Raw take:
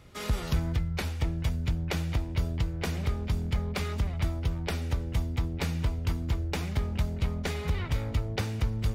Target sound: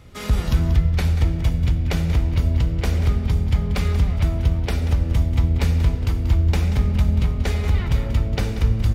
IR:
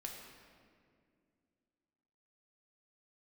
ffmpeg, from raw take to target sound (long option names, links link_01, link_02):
-filter_complex "[0:a]aecho=1:1:185:0.251,asplit=2[link_01][link_02];[1:a]atrim=start_sample=2205,lowshelf=frequency=220:gain=11[link_03];[link_02][link_03]afir=irnorm=-1:irlink=0,volume=1dB[link_04];[link_01][link_04]amix=inputs=2:normalize=0"